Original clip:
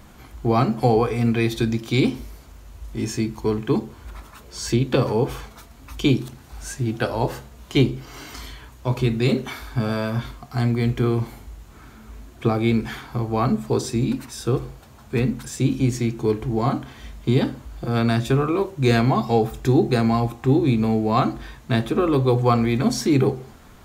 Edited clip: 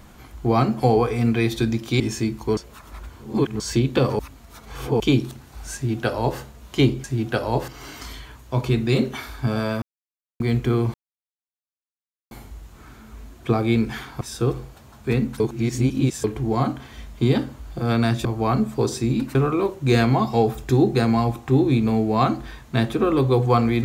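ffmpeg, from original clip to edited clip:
-filter_complex "[0:a]asplit=16[s0][s1][s2][s3][s4][s5][s6][s7][s8][s9][s10][s11][s12][s13][s14][s15];[s0]atrim=end=2.002[s16];[s1]atrim=start=2.968:end=3.542[s17];[s2]atrim=start=3.538:end=4.572,asetpts=PTS-STARTPTS,areverse[s18];[s3]atrim=start=4.568:end=5.162[s19];[s4]atrim=start=5.158:end=5.972,asetpts=PTS-STARTPTS,areverse[s20];[s5]atrim=start=5.968:end=8.012[s21];[s6]atrim=start=6.718:end=7.362[s22];[s7]atrim=start=8.008:end=10.15,asetpts=PTS-STARTPTS,afade=t=out:st=2.138:d=0.004:c=hsin[s23];[s8]atrim=start=10.15:end=10.73,asetpts=PTS-STARTPTS,volume=0[s24];[s9]atrim=start=10.73:end=11.27,asetpts=PTS-STARTPTS,afade=t=in:d=0.004:c=hsin,afade=t=out:st=0.536:d=0.004:c=hsin,apad=pad_dur=1.37[s25];[s10]atrim=start=11.27:end=13.172,asetpts=PTS-STARTPTS,afade=t=in:d=0.004:c=hsin[s26];[s11]atrim=start=14.268:end=15.462[s27];[s12]atrim=start=15.458:end=16.302,asetpts=PTS-STARTPTS,areverse[s28];[s13]atrim=start=16.298:end=18.312[s29];[s14]atrim=start=13.168:end=14.272[s30];[s15]atrim=start=18.308[s31];[s16][s17]acrossfade=d=0.004:c1=hsin:c2=hsin[s32];[s32][s18]acrossfade=d=0.004:c1=hsin:c2=hsin[s33];[s33][s19]acrossfade=d=0.004:c1=hsin:c2=hsin[s34];[s34][s20]acrossfade=d=0.004:c1=hsin:c2=hsin[s35];[s35][s21]acrossfade=d=0.004:c1=hsin:c2=hsin[s36];[s36][s22]acrossfade=d=0.004:c1=hsin:c2=hsin[s37];[s23][s24][s25][s26]concat=n=4:v=0:a=1[s38];[s37][s38]acrossfade=d=0.004:c1=hsin:c2=hsin[s39];[s39][s27]acrossfade=d=0.004:c1=hsin:c2=hsin[s40];[s40][s28]acrossfade=d=0.004:c1=hsin:c2=hsin[s41];[s41][s29]acrossfade=d=0.004:c1=hsin:c2=hsin[s42];[s42][s30]acrossfade=d=0.004:c1=hsin:c2=hsin[s43];[s43][s31]acrossfade=d=0.004:c1=hsin:c2=hsin"

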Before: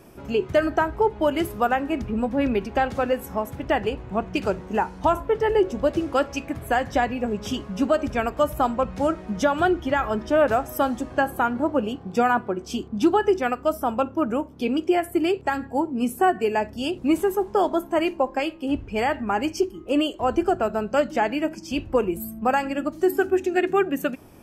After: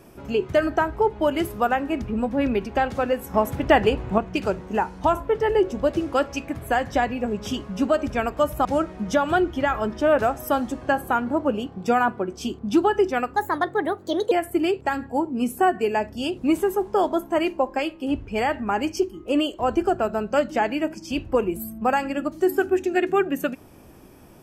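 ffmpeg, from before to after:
-filter_complex "[0:a]asplit=6[s0][s1][s2][s3][s4][s5];[s0]atrim=end=3.342[s6];[s1]atrim=start=3.338:end=4.182,asetpts=PTS-STARTPTS,volume=2[s7];[s2]atrim=start=4.178:end=8.652[s8];[s3]atrim=start=8.938:end=13.654[s9];[s4]atrim=start=13.65:end=14.92,asetpts=PTS-STARTPTS,asetrate=58653,aresample=44100[s10];[s5]atrim=start=14.916[s11];[s6][s7]acrossfade=d=0.004:c1=hsin:c2=hsin[s12];[s12][s8]acrossfade=d=0.004:c1=hsin:c2=hsin[s13];[s13][s9]acrossfade=d=0.004:c1=hsin:c2=hsin[s14];[s14][s10]acrossfade=d=0.004:c1=hsin:c2=hsin[s15];[s15][s11]acrossfade=d=0.004:c1=hsin:c2=hsin"

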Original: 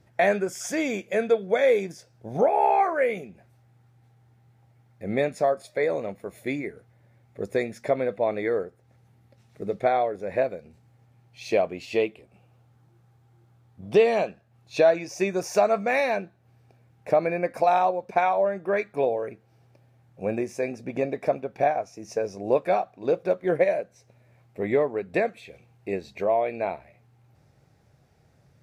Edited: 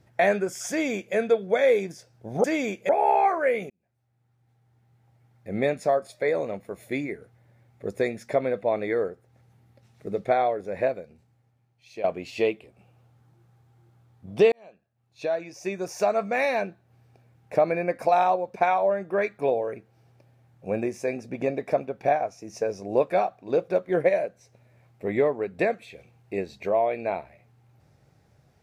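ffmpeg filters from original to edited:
-filter_complex "[0:a]asplit=6[s0][s1][s2][s3][s4][s5];[s0]atrim=end=2.442[s6];[s1]atrim=start=0.698:end=1.152[s7];[s2]atrim=start=2.438:end=3.25,asetpts=PTS-STARTPTS,afade=t=out:st=0.808:d=0.004:c=hsin[s8];[s3]atrim=start=3.25:end=11.59,asetpts=PTS-STARTPTS,afade=t=in:d=1.87,afade=t=out:st=7.1:d=1.24:c=qua:silence=0.223872[s9];[s4]atrim=start=11.59:end=14.07,asetpts=PTS-STARTPTS,afade=t=in:d=0.004:c=hsin:silence=0.223872,afade=t=out:st=2.476:d=0.004:c=hsin[s10];[s5]atrim=start=14.07,asetpts=PTS-STARTPTS,afade=t=in:d=2.14[s11];[s6][s7]acrossfade=d=0.004:c1=hsin:c2=hsin[s12];[s8][s9][s10][s11]concat=n=4:v=0:a=1[s13];[s12][s13]acrossfade=d=0.004:c1=hsin:c2=hsin"

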